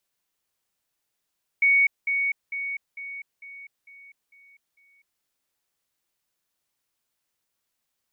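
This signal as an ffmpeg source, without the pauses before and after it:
ffmpeg -f lavfi -i "aevalsrc='pow(10,(-15.5-6*floor(t/0.45))/20)*sin(2*PI*2230*t)*clip(min(mod(t,0.45),0.25-mod(t,0.45))/0.005,0,1)':duration=3.6:sample_rate=44100" out.wav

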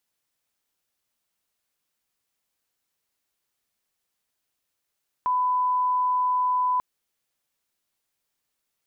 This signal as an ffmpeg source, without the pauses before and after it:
ffmpeg -f lavfi -i "sine=frequency=1000:duration=1.54:sample_rate=44100,volume=-1.94dB" out.wav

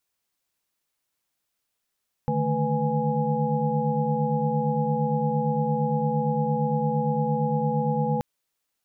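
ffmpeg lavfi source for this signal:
ffmpeg -f lavfi -i "aevalsrc='0.0398*(sin(2*PI*146.83*t)+sin(2*PI*155.56*t)+sin(2*PI*220*t)+sin(2*PI*493.88*t)+sin(2*PI*830.61*t))':duration=5.93:sample_rate=44100" out.wav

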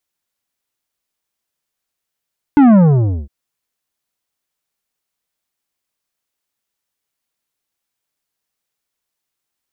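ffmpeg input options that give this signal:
ffmpeg -f lavfi -i "aevalsrc='0.501*clip((0.71-t)/0.54,0,1)*tanh(3.35*sin(2*PI*300*0.71/log(65/300)*(exp(log(65/300)*t/0.71)-1)))/tanh(3.35)':duration=0.71:sample_rate=44100" out.wav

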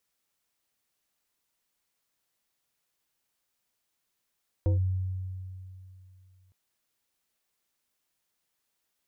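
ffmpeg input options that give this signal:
ffmpeg -f lavfi -i "aevalsrc='0.1*pow(10,-3*t/2.76)*sin(2*PI*93.2*t+0.51*clip(1-t/0.13,0,1)*sin(2*PI*4.47*93.2*t))':duration=1.86:sample_rate=44100" out.wav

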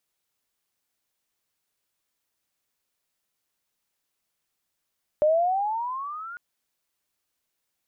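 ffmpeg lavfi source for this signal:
ffmpeg -f lavfi -i "aevalsrc='pow(10,(-16-19.5*t/1.15)/20)*sin(2*PI*593*1.15/(15.5*log(2)/12)*(exp(15.5*log(2)/12*t/1.15)-1))':duration=1.15:sample_rate=44100" out.wav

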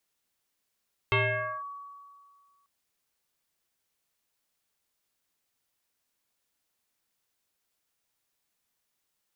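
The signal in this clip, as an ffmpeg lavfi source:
ffmpeg -f lavfi -i "aevalsrc='0.1*pow(10,-3*t/1.95)*sin(2*PI*1130*t+3.6*clip(1-t/0.51,0,1)*sin(2*PI*0.45*1130*t))':duration=1.54:sample_rate=44100" out.wav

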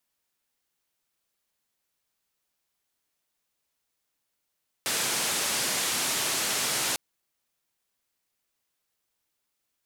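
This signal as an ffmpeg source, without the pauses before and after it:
ffmpeg -f lavfi -i "anoisesrc=color=white:duration=2.1:sample_rate=44100:seed=1,highpass=frequency=130,lowpass=frequency=10000,volume=-19.8dB" out.wav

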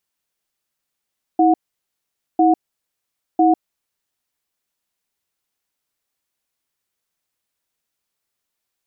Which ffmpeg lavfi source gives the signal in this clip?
ffmpeg -f lavfi -i "aevalsrc='0.224*(sin(2*PI*323*t)+sin(2*PI*730*t))*clip(min(mod(t,1),0.15-mod(t,1))/0.005,0,1)':duration=2.44:sample_rate=44100" out.wav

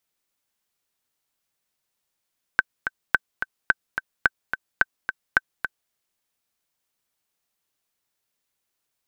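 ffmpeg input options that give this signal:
ffmpeg -f lavfi -i "aevalsrc='pow(10,(-3-8.5*gte(mod(t,2*60/216),60/216))/20)*sin(2*PI*1540*mod(t,60/216))*exp(-6.91*mod(t,60/216)/0.03)':duration=3.33:sample_rate=44100" out.wav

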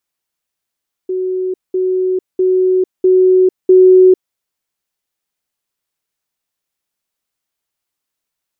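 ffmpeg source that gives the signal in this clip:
ffmpeg -f lavfi -i "aevalsrc='pow(10,(-15+3*floor(t/0.65))/20)*sin(2*PI*371*t)*clip(min(mod(t,0.65),0.45-mod(t,0.65))/0.005,0,1)':duration=3.25:sample_rate=44100" out.wav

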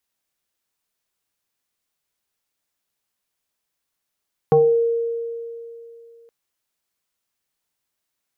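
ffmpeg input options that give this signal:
ffmpeg -f lavfi -i "aevalsrc='0.335*pow(10,-3*t/2.8)*sin(2*PI*464*t+1*pow(10,-3*t/0.4)*sin(2*PI*0.68*464*t))':duration=1.77:sample_rate=44100" out.wav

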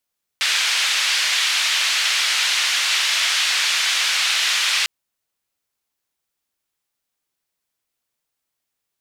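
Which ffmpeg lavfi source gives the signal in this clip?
ffmpeg -f lavfi -i "anoisesrc=color=white:duration=4.45:sample_rate=44100:seed=1,highpass=frequency=2000,lowpass=frequency=3800,volume=-4.4dB" out.wav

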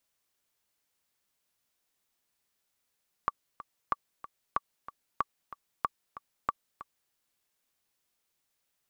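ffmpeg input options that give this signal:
ffmpeg -f lavfi -i "aevalsrc='pow(10,(-13.5-15.5*gte(mod(t,2*60/187),60/187))/20)*sin(2*PI*1150*mod(t,60/187))*exp(-6.91*mod(t,60/187)/0.03)':duration=3.85:sample_rate=44100" out.wav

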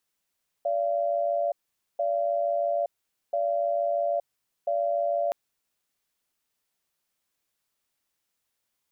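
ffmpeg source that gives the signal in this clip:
ffmpeg -f lavfi -i "aevalsrc='0.0501*(sin(2*PI*578*t)+sin(2*PI*684*t))*clip(min(mod(t,1.34),0.87-mod(t,1.34))/0.005,0,1)':duration=4.67:sample_rate=44100" out.wav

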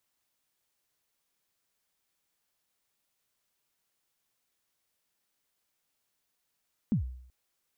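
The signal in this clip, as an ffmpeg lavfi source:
ffmpeg -f lavfi -i "aevalsrc='0.0891*pow(10,-3*t/0.66)*sin(2*PI*(250*0.11/log(63/250)*(exp(log(63/250)*min(t,0.11)/0.11)-1)+63*max(t-0.11,0)))':duration=0.38:sample_rate=44100" out.wav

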